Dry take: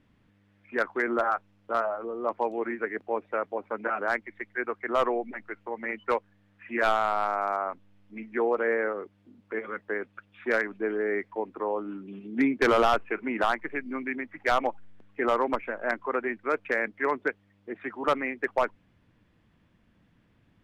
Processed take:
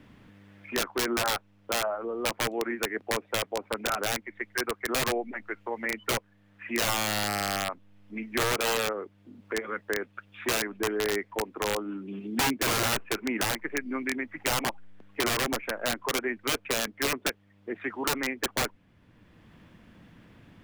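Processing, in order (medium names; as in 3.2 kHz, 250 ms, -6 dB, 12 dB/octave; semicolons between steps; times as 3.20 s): integer overflow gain 20 dB; three bands compressed up and down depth 40%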